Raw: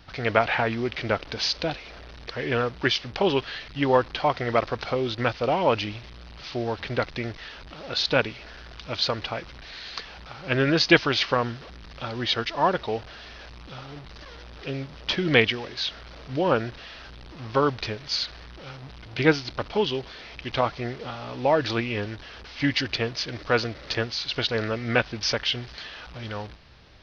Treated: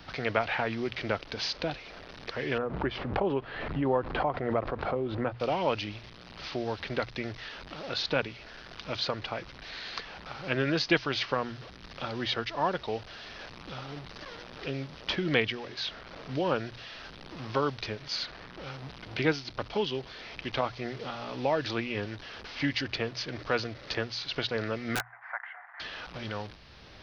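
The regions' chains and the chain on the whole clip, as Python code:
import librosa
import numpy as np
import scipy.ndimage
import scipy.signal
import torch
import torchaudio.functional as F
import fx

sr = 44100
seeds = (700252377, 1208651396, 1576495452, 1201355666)

y = fx.chain(x, sr, fx.lowpass(hz=1100.0, slope=12),
    fx.pre_swell(db_per_s=50.0), at=(2.58, 5.4))
y = fx.chain(y, sr, fx.cheby1_bandpass(low_hz=710.0, high_hz=2000.0, order=4),
    fx.overflow_wrap(gain_db=17.0), at=(24.95, 25.8))
y = fx.hum_notches(y, sr, base_hz=60, count=2)
y = fx.band_squash(y, sr, depth_pct=40)
y = y * librosa.db_to_amplitude(-5.5)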